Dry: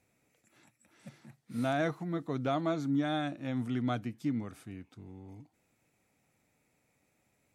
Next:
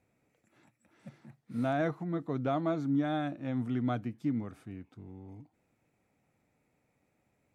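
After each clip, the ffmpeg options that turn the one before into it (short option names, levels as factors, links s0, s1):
-af "highshelf=f=2700:g=-11,volume=1.12"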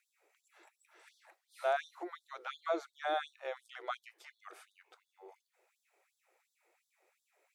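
-filter_complex "[0:a]asplit=2[s0][s1];[s1]alimiter=level_in=1.68:limit=0.0631:level=0:latency=1:release=171,volume=0.596,volume=0.708[s2];[s0][s2]amix=inputs=2:normalize=0,afftfilt=real='re*gte(b*sr/1024,320*pow(3400/320,0.5+0.5*sin(2*PI*2.8*pts/sr)))':imag='im*gte(b*sr/1024,320*pow(3400/320,0.5+0.5*sin(2*PI*2.8*pts/sr)))':win_size=1024:overlap=0.75"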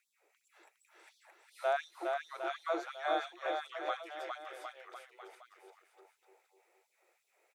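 -af "aecho=1:1:410|758.5|1055|1307|1521:0.631|0.398|0.251|0.158|0.1"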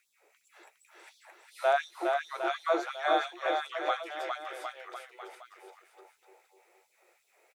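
-filter_complex "[0:a]asplit=2[s0][s1];[s1]adelay=14,volume=0.282[s2];[s0][s2]amix=inputs=2:normalize=0,volume=2.11"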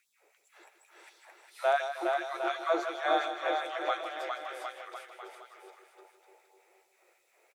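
-af "aecho=1:1:157|314|471|628|785:0.316|0.145|0.0669|0.0308|0.0142,volume=0.891"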